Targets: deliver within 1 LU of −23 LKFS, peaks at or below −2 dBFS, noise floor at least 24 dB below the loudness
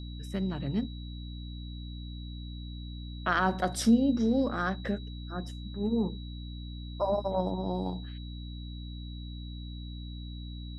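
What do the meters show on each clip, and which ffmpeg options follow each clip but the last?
mains hum 60 Hz; hum harmonics up to 300 Hz; level of the hum −38 dBFS; interfering tone 3,900 Hz; level of the tone −50 dBFS; integrated loudness −33.0 LKFS; sample peak −13.5 dBFS; target loudness −23.0 LKFS
→ -af "bandreject=frequency=60:width_type=h:width=6,bandreject=frequency=120:width_type=h:width=6,bandreject=frequency=180:width_type=h:width=6,bandreject=frequency=240:width_type=h:width=6,bandreject=frequency=300:width_type=h:width=6"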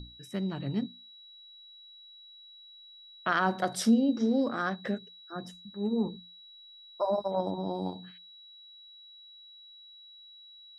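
mains hum none found; interfering tone 3,900 Hz; level of the tone −50 dBFS
→ -af "bandreject=frequency=3900:width=30"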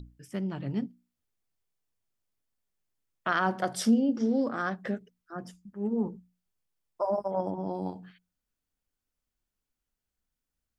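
interfering tone none found; integrated loudness −30.5 LKFS; sample peak −14.0 dBFS; target loudness −23.0 LKFS
→ -af "volume=7.5dB"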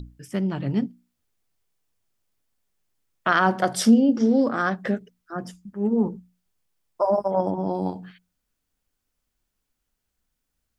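integrated loudness −23.0 LKFS; sample peak −6.5 dBFS; background noise floor −79 dBFS

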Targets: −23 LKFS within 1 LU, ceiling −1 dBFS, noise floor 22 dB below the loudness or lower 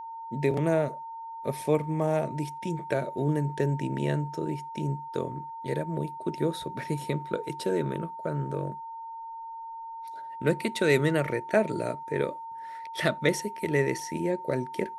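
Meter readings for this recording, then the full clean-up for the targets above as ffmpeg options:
interfering tone 910 Hz; level of the tone −37 dBFS; integrated loudness −29.5 LKFS; sample peak −8.5 dBFS; target loudness −23.0 LKFS
→ -af "bandreject=frequency=910:width=30"
-af "volume=6.5dB"

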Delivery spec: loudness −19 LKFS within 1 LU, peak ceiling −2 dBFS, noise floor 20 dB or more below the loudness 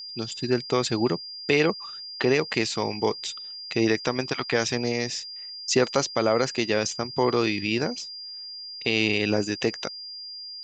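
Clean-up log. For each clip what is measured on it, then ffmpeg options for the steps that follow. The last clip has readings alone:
interfering tone 4,800 Hz; level of the tone −36 dBFS; integrated loudness −26.0 LKFS; sample peak −8.0 dBFS; target loudness −19.0 LKFS
→ -af "bandreject=frequency=4800:width=30"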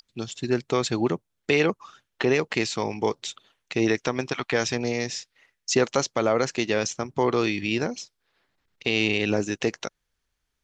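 interfering tone none found; integrated loudness −25.5 LKFS; sample peak −7.5 dBFS; target loudness −19.0 LKFS
→ -af "volume=6.5dB,alimiter=limit=-2dB:level=0:latency=1"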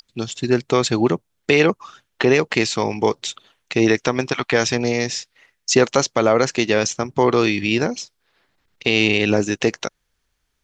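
integrated loudness −19.0 LKFS; sample peak −2.0 dBFS; background noise floor −72 dBFS

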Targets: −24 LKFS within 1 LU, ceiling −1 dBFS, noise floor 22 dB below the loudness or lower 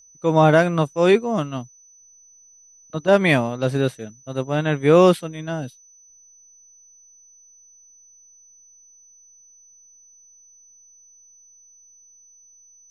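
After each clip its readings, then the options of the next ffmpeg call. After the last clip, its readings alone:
interfering tone 6,000 Hz; level of the tone −49 dBFS; integrated loudness −19.0 LKFS; sample peak −2.5 dBFS; target loudness −24.0 LKFS
→ -af "bandreject=frequency=6000:width=30"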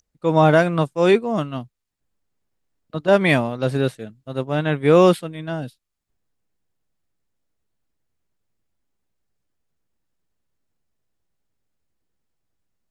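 interfering tone none found; integrated loudness −18.5 LKFS; sample peak −2.5 dBFS; target loudness −24.0 LKFS
→ -af "volume=-5.5dB"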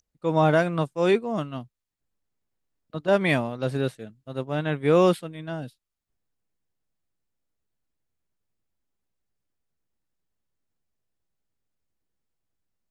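integrated loudness −24.0 LKFS; sample peak −8.0 dBFS; background noise floor −84 dBFS

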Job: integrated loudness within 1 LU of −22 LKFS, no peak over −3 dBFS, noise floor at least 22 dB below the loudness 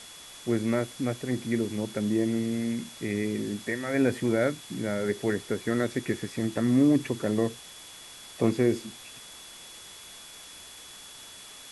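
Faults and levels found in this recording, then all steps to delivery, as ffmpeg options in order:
interfering tone 3,400 Hz; level of the tone −49 dBFS; background noise floor −47 dBFS; target noise floor −50 dBFS; integrated loudness −28.0 LKFS; sample peak −10.5 dBFS; target loudness −22.0 LKFS
→ -af "bandreject=frequency=3400:width=30"
-af "afftdn=noise_reduction=6:noise_floor=-47"
-af "volume=6dB"

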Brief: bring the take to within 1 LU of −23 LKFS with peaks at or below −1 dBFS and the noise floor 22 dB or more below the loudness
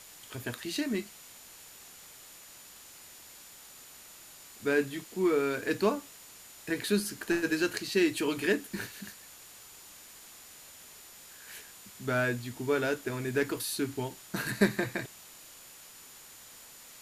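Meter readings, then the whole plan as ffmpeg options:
interfering tone 7,000 Hz; level of the tone −57 dBFS; background noise floor −52 dBFS; target noise floor −53 dBFS; integrated loudness −31.0 LKFS; sample peak −10.0 dBFS; target loudness −23.0 LKFS
→ -af "bandreject=frequency=7000:width=30"
-af "afftdn=noise_reduction=6:noise_floor=-52"
-af "volume=8dB"

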